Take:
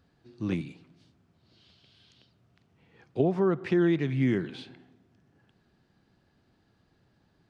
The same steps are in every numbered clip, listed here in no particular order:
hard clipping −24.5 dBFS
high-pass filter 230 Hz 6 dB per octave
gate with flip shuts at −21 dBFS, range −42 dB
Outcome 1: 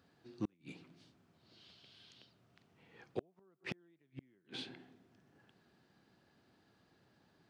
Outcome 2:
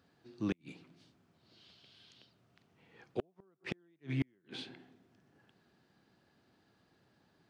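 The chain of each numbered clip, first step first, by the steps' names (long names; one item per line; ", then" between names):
gate with flip, then hard clipping, then high-pass filter
high-pass filter, then gate with flip, then hard clipping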